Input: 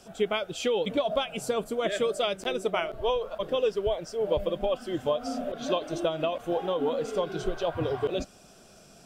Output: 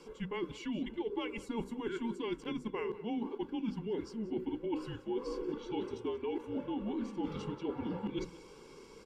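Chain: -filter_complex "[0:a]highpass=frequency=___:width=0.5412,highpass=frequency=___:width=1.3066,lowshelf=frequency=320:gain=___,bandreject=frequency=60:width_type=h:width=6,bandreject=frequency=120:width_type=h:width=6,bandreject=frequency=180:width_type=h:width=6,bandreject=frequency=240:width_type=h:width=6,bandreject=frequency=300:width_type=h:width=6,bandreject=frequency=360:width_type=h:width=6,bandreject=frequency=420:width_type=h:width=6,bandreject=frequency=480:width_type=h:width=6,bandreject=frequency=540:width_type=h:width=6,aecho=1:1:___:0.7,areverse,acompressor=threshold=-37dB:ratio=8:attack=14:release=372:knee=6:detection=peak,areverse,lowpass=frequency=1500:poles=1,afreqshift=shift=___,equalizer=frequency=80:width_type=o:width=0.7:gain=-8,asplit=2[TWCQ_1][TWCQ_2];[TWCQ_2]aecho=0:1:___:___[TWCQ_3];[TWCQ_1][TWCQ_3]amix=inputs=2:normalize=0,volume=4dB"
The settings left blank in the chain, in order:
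43, 43, -10.5, 1.7, -230, 184, 0.119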